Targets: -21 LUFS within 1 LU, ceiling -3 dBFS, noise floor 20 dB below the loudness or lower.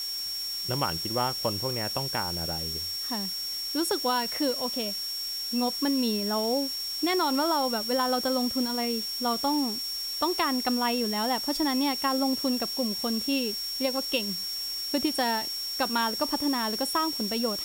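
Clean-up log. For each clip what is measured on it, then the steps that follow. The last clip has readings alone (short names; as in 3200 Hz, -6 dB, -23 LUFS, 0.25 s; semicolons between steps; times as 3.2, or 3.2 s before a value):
steady tone 5500 Hz; tone level -31 dBFS; noise floor -33 dBFS; noise floor target -47 dBFS; loudness -27.0 LUFS; peak -12.5 dBFS; loudness target -21.0 LUFS
-> notch 5500 Hz, Q 30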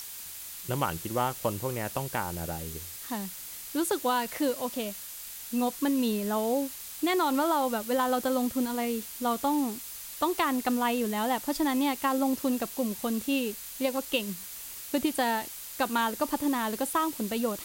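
steady tone none; noise floor -42 dBFS; noise floor target -50 dBFS
-> noise print and reduce 8 dB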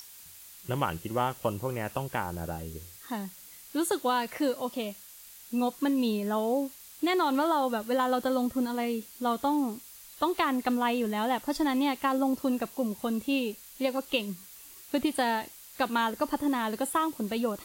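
noise floor -50 dBFS; loudness -30.0 LUFS; peak -14.0 dBFS; loudness target -21.0 LUFS
-> gain +9 dB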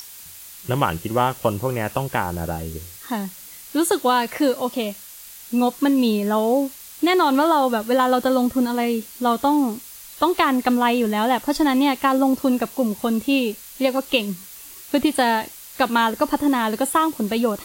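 loudness -21.0 LUFS; peak -5.0 dBFS; noise floor -41 dBFS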